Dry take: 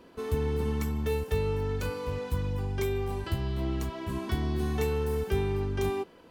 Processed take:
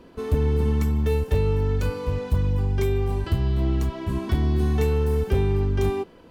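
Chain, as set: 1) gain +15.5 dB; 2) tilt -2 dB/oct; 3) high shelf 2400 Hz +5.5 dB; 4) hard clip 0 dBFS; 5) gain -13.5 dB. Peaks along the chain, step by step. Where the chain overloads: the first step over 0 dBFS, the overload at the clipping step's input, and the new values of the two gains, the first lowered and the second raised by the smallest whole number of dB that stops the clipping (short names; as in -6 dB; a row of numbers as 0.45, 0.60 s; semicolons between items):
+1.0, +7.0, +7.0, 0.0, -13.5 dBFS; step 1, 7.0 dB; step 1 +8.5 dB, step 5 -6.5 dB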